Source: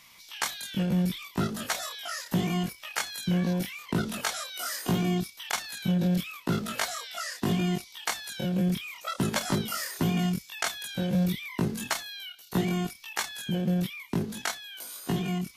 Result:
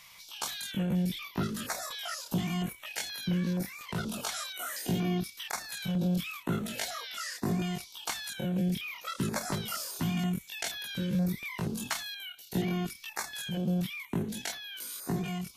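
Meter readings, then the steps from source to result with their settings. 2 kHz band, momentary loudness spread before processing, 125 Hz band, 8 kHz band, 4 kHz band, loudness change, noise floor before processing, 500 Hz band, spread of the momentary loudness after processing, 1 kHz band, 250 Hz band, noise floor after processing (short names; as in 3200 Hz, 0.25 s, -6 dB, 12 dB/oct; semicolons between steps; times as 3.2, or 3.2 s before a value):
-4.0 dB, 6 LU, -3.5 dB, -3.0 dB, -3.0 dB, -3.5 dB, -53 dBFS, -4.5 dB, 6 LU, -4.5 dB, -3.5 dB, -53 dBFS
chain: in parallel at +2 dB: limiter -30.5 dBFS, peak gain reduction 11.5 dB; on the sum: stepped notch 4.2 Hz 280–8000 Hz; gain -6 dB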